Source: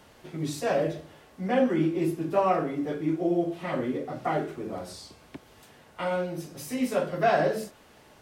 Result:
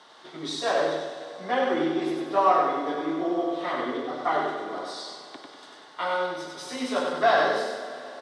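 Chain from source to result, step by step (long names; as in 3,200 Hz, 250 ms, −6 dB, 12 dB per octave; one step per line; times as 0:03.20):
loudspeaker in its box 470–7,700 Hz, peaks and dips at 540 Hz −6 dB, 1,100 Hz +4 dB, 2,500 Hz −9 dB, 3,700 Hz +8 dB, 7,100 Hz −7 dB
repeating echo 96 ms, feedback 45%, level −3.5 dB
convolution reverb RT60 3.7 s, pre-delay 44 ms, DRR 10 dB
level +4 dB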